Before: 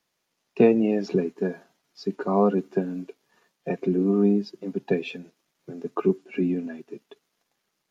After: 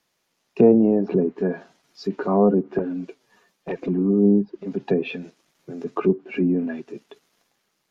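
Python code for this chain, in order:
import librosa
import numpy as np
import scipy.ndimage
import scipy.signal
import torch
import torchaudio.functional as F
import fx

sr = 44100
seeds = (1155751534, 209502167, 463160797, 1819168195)

y = fx.env_flanger(x, sr, rest_ms=10.7, full_db=-16.0, at=(2.78, 4.67))
y = fx.transient(y, sr, attack_db=-3, sustain_db=4)
y = fx.env_lowpass_down(y, sr, base_hz=750.0, full_db=-20.0)
y = y * 10.0 ** (4.5 / 20.0)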